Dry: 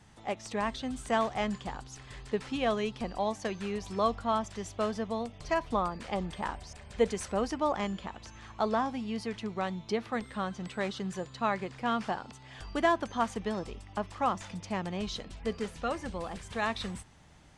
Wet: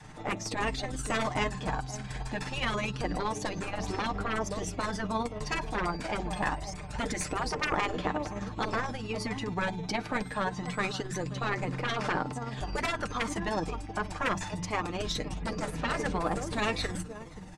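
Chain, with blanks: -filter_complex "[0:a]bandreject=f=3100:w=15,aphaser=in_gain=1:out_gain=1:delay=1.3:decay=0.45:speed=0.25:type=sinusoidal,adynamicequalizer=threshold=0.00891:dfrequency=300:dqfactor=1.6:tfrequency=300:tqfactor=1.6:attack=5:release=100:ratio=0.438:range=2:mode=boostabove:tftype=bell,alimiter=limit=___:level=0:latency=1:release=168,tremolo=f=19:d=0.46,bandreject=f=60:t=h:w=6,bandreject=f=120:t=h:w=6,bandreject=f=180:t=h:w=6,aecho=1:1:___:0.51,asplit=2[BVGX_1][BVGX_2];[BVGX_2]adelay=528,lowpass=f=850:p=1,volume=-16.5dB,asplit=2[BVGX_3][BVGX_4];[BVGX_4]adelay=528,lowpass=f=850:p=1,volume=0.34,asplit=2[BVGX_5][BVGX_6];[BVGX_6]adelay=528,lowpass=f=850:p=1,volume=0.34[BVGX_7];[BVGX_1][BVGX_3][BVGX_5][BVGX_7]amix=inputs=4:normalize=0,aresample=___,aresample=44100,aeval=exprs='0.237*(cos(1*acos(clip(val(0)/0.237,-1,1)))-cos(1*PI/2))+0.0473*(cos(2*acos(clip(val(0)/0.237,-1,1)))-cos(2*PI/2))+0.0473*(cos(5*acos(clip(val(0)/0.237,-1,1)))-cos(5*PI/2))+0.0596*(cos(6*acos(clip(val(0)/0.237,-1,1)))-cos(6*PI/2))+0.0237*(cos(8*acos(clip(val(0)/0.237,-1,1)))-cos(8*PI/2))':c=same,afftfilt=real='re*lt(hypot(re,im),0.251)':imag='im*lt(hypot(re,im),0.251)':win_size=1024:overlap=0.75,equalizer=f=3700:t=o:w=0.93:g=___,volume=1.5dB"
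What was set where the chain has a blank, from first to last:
-16dB, 6.6, 32000, -2.5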